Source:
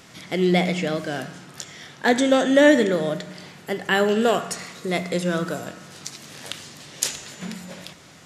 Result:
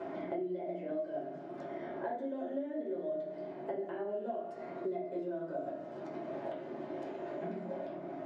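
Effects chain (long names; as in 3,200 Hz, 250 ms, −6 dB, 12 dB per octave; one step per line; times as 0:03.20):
flanger 0.58 Hz, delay 2.7 ms, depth 7.5 ms, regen −68%
downward compressor, threshold −33 dBFS, peak gain reduction 17.5 dB
pair of resonant band-passes 480 Hz, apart 0.71 octaves
convolution reverb RT60 0.45 s, pre-delay 6 ms, DRR −5.5 dB
multiband upward and downward compressor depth 100%
level −4 dB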